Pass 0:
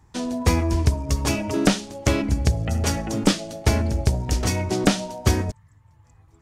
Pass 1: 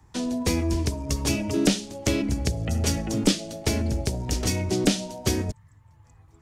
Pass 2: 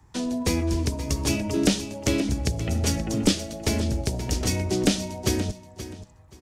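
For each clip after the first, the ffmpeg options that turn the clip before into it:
-filter_complex "[0:a]acrossover=split=200|560|2100[a][b][c][d];[a]alimiter=limit=-20dB:level=0:latency=1:release=307[e];[c]acompressor=threshold=-42dB:ratio=6[f];[e][b][f][d]amix=inputs=4:normalize=0"
-af "aecho=1:1:527|1054:0.224|0.0448"

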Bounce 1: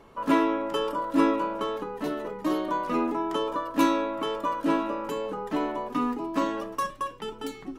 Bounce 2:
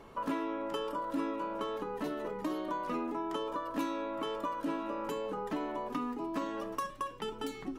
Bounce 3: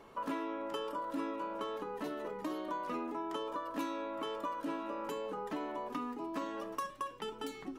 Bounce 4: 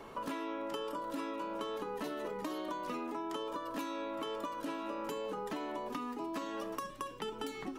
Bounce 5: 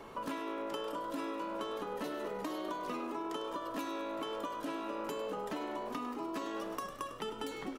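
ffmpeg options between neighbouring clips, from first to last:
-af "acompressor=threshold=-34dB:ratio=4"
-af "lowshelf=f=160:g=-8,volume=-2dB"
-filter_complex "[0:a]acrossover=split=430|2700[a][b][c];[a]acompressor=threshold=-49dB:ratio=4[d];[b]acompressor=threshold=-48dB:ratio=4[e];[c]acompressor=threshold=-56dB:ratio=4[f];[d][e][f]amix=inputs=3:normalize=0,volume=6.5dB"
-filter_complex "[0:a]asplit=8[a][b][c][d][e][f][g][h];[b]adelay=101,afreqshift=54,volume=-12dB[i];[c]adelay=202,afreqshift=108,volume=-16.3dB[j];[d]adelay=303,afreqshift=162,volume=-20.6dB[k];[e]adelay=404,afreqshift=216,volume=-24.9dB[l];[f]adelay=505,afreqshift=270,volume=-29.2dB[m];[g]adelay=606,afreqshift=324,volume=-33.5dB[n];[h]adelay=707,afreqshift=378,volume=-37.8dB[o];[a][i][j][k][l][m][n][o]amix=inputs=8:normalize=0"

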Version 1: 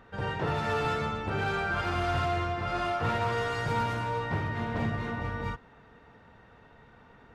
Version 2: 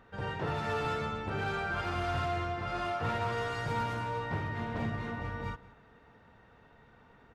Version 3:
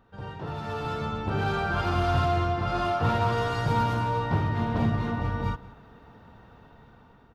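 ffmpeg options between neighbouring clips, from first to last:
-filter_complex "[0:a]asplit=2[a][b];[b]adelay=186.6,volume=-19dB,highshelf=f=4k:g=-4.2[c];[a][c]amix=inputs=2:normalize=0,volume=-4dB"
-af "equalizer=f=500:t=o:w=1:g=-4,equalizer=f=2k:t=o:w=1:g=-9,equalizer=f=8k:t=o:w=1:g=-7,dynaudnorm=f=430:g=5:m=10.5dB"

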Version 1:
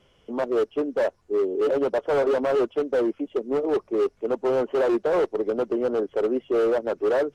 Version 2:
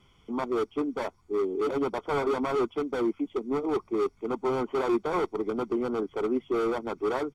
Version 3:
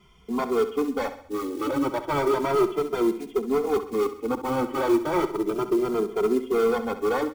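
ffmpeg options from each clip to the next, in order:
-af "aecho=1:1:0.9:0.73,volume=-2.5dB"
-filter_complex "[0:a]acrusher=bits=6:mode=log:mix=0:aa=0.000001,aecho=1:1:66|132|198|264|330:0.251|0.116|0.0532|0.0244|0.0112,asplit=2[a][b];[b]adelay=2.5,afreqshift=0.33[c];[a][c]amix=inputs=2:normalize=1,volume=7dB"

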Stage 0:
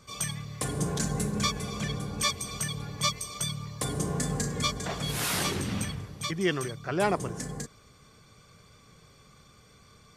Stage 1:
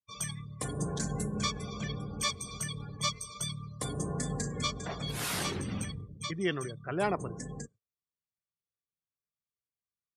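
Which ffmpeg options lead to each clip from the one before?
-af "agate=range=-11dB:threshold=-49dB:ratio=16:detection=peak,afftdn=nr=35:nf=-41,volume=-4dB"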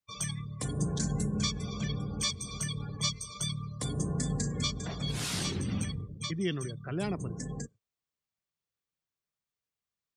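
-filter_complex "[0:a]equalizer=f=12k:w=1.7:g=-14.5,acrossover=split=310|3000[a][b][c];[b]acompressor=threshold=-51dB:ratio=2.5[d];[a][d][c]amix=inputs=3:normalize=0,volume=4dB"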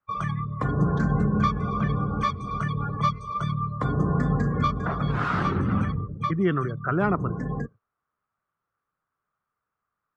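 -af "lowpass=f=1.3k:t=q:w=5,volume=8.5dB"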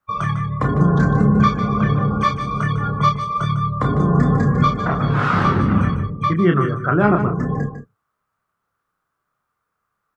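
-filter_complex "[0:a]asplit=2[a][b];[b]adelay=29,volume=-5.5dB[c];[a][c]amix=inputs=2:normalize=0,asplit=2[d][e];[e]aecho=0:1:151:0.316[f];[d][f]amix=inputs=2:normalize=0,volume=6.5dB"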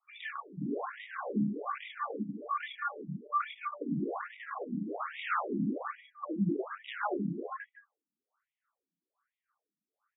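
-af "asoftclip=type=tanh:threshold=-18dB,afftfilt=real='re*between(b*sr/1024,230*pow(2700/230,0.5+0.5*sin(2*PI*1.2*pts/sr))/1.41,230*pow(2700/230,0.5+0.5*sin(2*PI*1.2*pts/sr))*1.41)':imag='im*between(b*sr/1024,230*pow(2700/230,0.5+0.5*sin(2*PI*1.2*pts/sr))/1.41,230*pow(2700/230,0.5+0.5*sin(2*PI*1.2*pts/sr))*1.41)':win_size=1024:overlap=0.75,volume=-4dB"

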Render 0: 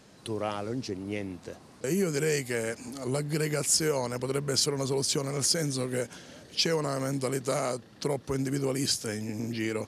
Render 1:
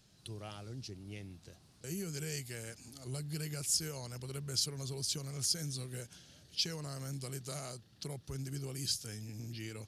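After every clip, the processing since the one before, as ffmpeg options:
-af "equalizer=f=250:t=o:w=1:g=-11,equalizer=f=500:t=o:w=1:g=-12,equalizer=f=1k:t=o:w=1:g=-11,equalizer=f=2k:t=o:w=1:g=-9,equalizer=f=8k:t=o:w=1:g=-5,volume=-3dB"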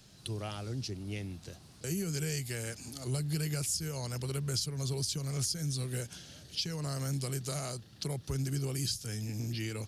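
-filter_complex "[0:a]acrossover=split=170[a][b];[b]acompressor=threshold=-44dB:ratio=2.5[c];[a][c]amix=inputs=2:normalize=0,volume=8dB"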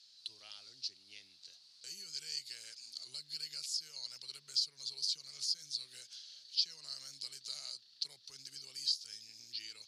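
-af "bandpass=f=4.4k:t=q:w=4.6:csg=0,volume=5.5dB"

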